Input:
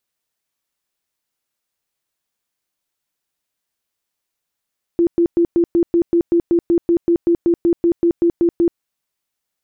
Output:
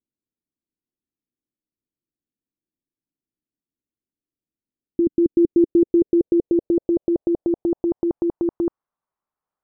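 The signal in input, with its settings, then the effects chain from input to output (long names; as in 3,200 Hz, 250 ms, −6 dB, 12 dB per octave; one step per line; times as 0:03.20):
tone bursts 341 Hz, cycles 27, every 0.19 s, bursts 20, −10.5 dBFS
output level in coarse steps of 21 dB
low-pass filter sweep 290 Hz → 1,100 Hz, 0:05.08–0:08.71
linearly interpolated sample-rate reduction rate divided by 3×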